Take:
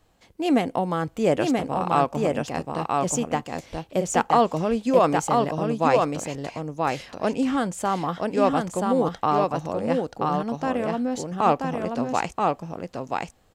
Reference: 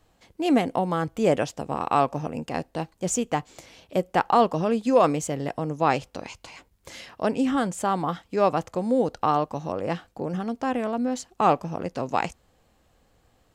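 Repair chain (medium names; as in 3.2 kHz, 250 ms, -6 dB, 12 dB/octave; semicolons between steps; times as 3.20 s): de-plosive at 3.71 s; inverse comb 981 ms -3 dB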